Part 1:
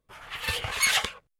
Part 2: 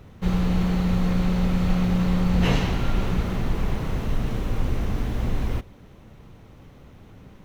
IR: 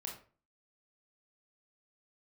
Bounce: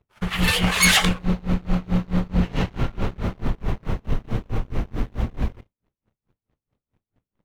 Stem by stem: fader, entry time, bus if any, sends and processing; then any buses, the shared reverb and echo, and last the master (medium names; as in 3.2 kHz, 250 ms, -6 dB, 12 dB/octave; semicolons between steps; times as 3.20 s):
+1.0 dB, 0.00 s, send -23 dB, none
+1.5 dB, 0.00 s, no send, treble shelf 4.6 kHz -10 dB; feedback comb 110 Hz, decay 0.47 s, harmonics all, mix 40%; logarithmic tremolo 4.6 Hz, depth 24 dB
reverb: on, RT60 0.40 s, pre-delay 22 ms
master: waveshaping leveller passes 2; gate -36 dBFS, range -20 dB